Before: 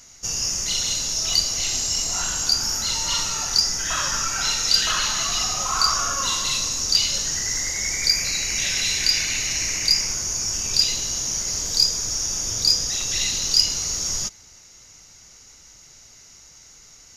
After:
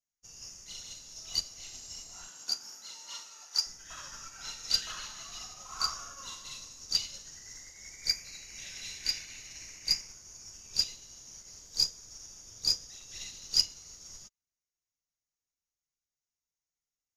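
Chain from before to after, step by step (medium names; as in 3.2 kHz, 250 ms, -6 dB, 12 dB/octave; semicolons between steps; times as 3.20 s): 2.27–3.65 s: high-pass 190 Hz -> 520 Hz 12 dB/octave; upward expansion 2.5:1, over -41 dBFS; trim -5.5 dB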